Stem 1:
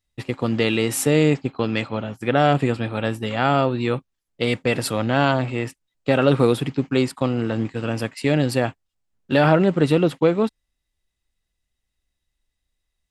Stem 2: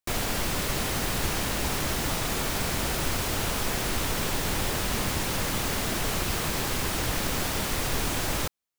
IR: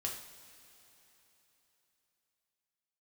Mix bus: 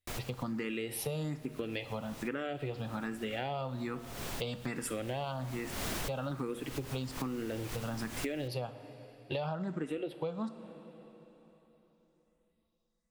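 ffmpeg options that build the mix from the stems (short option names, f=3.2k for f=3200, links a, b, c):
-filter_complex "[0:a]asplit=2[a][b];[b]afreqshift=1.2[c];[a][c]amix=inputs=2:normalize=1,volume=-7dB,asplit=3[d][e][f];[e]volume=-7.5dB[g];[1:a]afade=t=in:st=4.73:d=0.65:silence=0.281838[h];[f]apad=whole_len=387462[i];[h][i]sidechaincompress=threshold=-49dB:ratio=5:attack=12:release=218[j];[2:a]atrim=start_sample=2205[k];[g][k]afir=irnorm=-1:irlink=0[l];[d][j][l]amix=inputs=3:normalize=0,acompressor=threshold=-33dB:ratio=10"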